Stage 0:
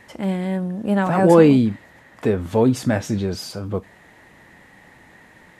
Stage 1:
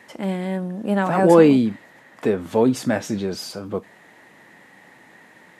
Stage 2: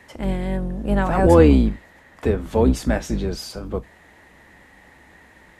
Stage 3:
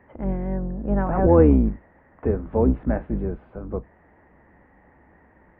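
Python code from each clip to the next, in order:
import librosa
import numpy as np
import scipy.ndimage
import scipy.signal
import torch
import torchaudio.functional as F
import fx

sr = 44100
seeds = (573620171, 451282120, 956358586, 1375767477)

y1 = scipy.signal.sosfilt(scipy.signal.butter(2, 180.0, 'highpass', fs=sr, output='sos'), x)
y2 = fx.octave_divider(y1, sr, octaves=2, level_db=1.0)
y2 = y2 * librosa.db_to_amplitude(-1.0)
y3 = scipy.ndimage.gaussian_filter1d(y2, 5.4, mode='constant')
y3 = y3 * librosa.db_to_amplitude(-2.0)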